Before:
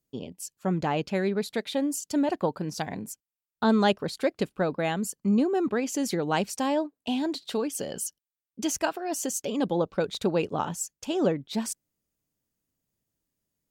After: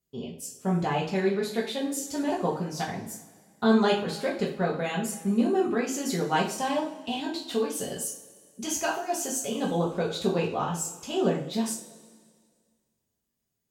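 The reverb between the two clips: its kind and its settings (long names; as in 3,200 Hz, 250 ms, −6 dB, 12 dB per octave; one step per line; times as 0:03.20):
coupled-rooms reverb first 0.39 s, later 1.9 s, from −19 dB, DRR −4.5 dB
level −5 dB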